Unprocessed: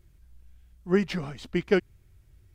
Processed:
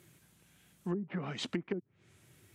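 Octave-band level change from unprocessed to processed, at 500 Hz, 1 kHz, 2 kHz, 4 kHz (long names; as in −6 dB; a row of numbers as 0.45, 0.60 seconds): −14.0, −7.5, −12.5, −3.5 decibels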